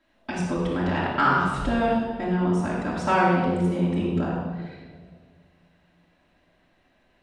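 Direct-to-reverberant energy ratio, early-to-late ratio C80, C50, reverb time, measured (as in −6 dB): −7.5 dB, 1.5 dB, −0.5 dB, non-exponential decay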